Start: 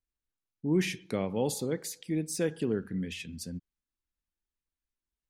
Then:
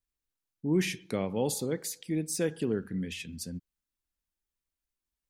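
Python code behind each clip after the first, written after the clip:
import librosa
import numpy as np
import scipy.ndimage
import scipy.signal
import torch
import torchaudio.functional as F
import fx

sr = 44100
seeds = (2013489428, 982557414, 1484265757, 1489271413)

y = fx.high_shelf(x, sr, hz=6800.0, db=4.0)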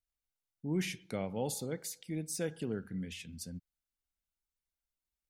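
y = x + 0.31 * np.pad(x, (int(1.4 * sr / 1000.0), 0))[:len(x)]
y = y * 10.0 ** (-5.5 / 20.0)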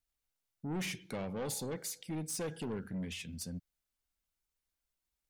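y = 10.0 ** (-37.0 / 20.0) * np.tanh(x / 10.0 ** (-37.0 / 20.0))
y = y * 10.0 ** (3.5 / 20.0)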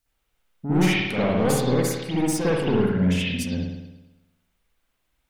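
y = fx.rev_spring(x, sr, rt60_s=1.0, pass_ms=(55,), chirp_ms=55, drr_db=-9.0)
y = y * 10.0 ** (8.5 / 20.0)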